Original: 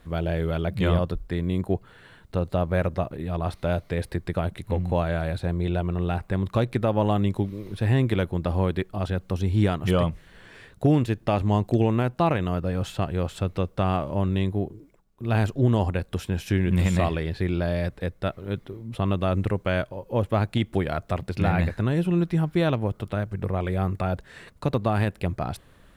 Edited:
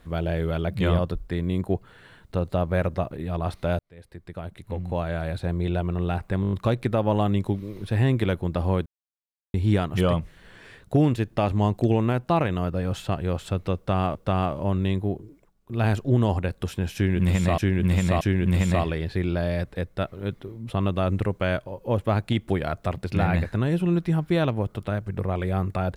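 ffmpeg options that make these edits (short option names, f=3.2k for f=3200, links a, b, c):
-filter_complex "[0:a]asplit=12[a][b][c][d][e][f][g][h][i][j][k][l];[a]atrim=end=3.79,asetpts=PTS-STARTPTS,afade=t=out:st=3.786:d=0.004:c=hsin[m];[b]atrim=start=3.79:end=6.442,asetpts=PTS-STARTPTS,afade=t=in:d=1.77[n];[c]atrim=start=6.418:end=6.442[o];[d]atrim=start=6.418:end=6.442[p];[e]atrim=start=6.418:end=6.442[q];[f]atrim=start=6.418:end=6.442[r];[g]atrim=start=6.418:end=8.76,asetpts=PTS-STARTPTS,afade=t=out:st=2.338:d=0.004:c=hsin[s];[h]atrim=start=8.76:end=9.44,asetpts=PTS-STARTPTS,volume=0[t];[i]atrim=start=9.44:end=14.052,asetpts=PTS-STARTPTS,afade=t=in:d=0.004:c=hsin[u];[j]atrim=start=13.658:end=17.092[v];[k]atrim=start=16.458:end=17.092[w];[l]atrim=start=16.458[x];[m][n]concat=n=2:v=0:a=1[y];[y][o]acrossfade=d=0.004:c1=hsin:c2=hsin[z];[z][p]acrossfade=d=0.004:c1=hsin:c2=hsin[aa];[aa][q]acrossfade=d=0.004:c1=hsin:c2=hsin[ab];[ab][r]acrossfade=d=0.004:c1=hsin:c2=hsin[ac];[s][t][u]concat=n=3:v=0:a=1[ad];[ac][ad]acrossfade=d=0.004:c1=hsin:c2=hsin[ae];[ae][v]acrossfade=d=0.004:c1=hsin:c2=hsin[af];[af][w]acrossfade=d=0.004:c1=hsin:c2=hsin[ag];[ag][x]acrossfade=d=0.004:c1=hsin:c2=hsin"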